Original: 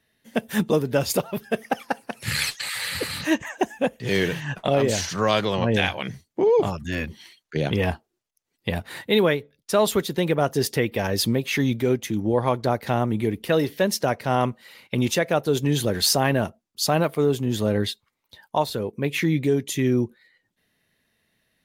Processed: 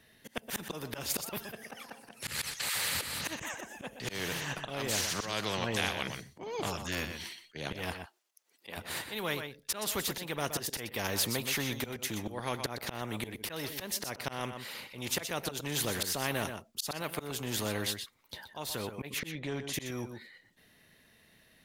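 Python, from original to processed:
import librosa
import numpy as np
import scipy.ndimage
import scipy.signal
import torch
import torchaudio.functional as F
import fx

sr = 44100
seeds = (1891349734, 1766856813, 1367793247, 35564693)

y = fx.auto_swell(x, sr, attack_ms=302.0)
y = fx.highpass(y, sr, hz=fx.line((7.92, 920.0), (8.76, 300.0)), slope=12, at=(7.92, 8.76), fade=0.02)
y = fx.spacing_loss(y, sr, db_at_10k=21, at=(19.18, 19.73), fade=0.02)
y = y + 10.0 ** (-14.0 / 20.0) * np.pad(y, (int(123 * sr / 1000.0), 0))[:len(y)]
y = fx.spectral_comp(y, sr, ratio=2.0)
y = F.gain(torch.from_numpy(y), -8.5).numpy()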